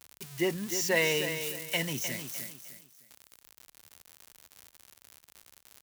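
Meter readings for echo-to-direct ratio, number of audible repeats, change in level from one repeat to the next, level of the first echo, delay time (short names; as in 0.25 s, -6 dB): -8.5 dB, 3, -10.5 dB, -9.0 dB, 0.305 s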